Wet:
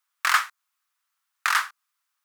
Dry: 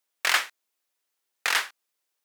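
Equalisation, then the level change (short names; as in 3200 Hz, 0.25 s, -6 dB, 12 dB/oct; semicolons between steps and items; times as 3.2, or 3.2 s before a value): dynamic EQ 2700 Hz, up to -5 dB, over -36 dBFS, Q 0.81; resonant high-pass 1200 Hz, resonance Q 3.4; 0.0 dB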